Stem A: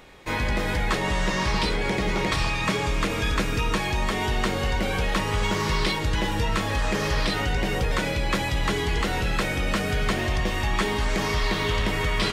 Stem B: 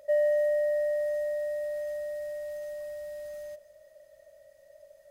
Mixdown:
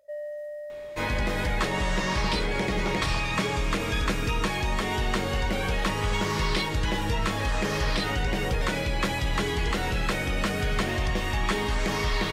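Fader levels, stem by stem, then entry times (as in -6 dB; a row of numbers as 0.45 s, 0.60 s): -2.0 dB, -11.0 dB; 0.70 s, 0.00 s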